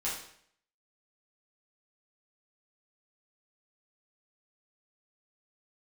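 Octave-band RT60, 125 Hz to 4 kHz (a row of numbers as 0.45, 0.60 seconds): 0.65, 0.65, 0.65, 0.60, 0.65, 0.60 seconds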